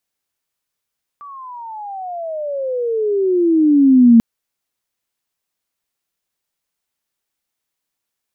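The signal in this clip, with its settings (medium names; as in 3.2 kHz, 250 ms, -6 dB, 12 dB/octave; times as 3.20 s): gliding synth tone sine, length 2.99 s, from 1.17 kHz, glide -28.5 st, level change +28 dB, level -4 dB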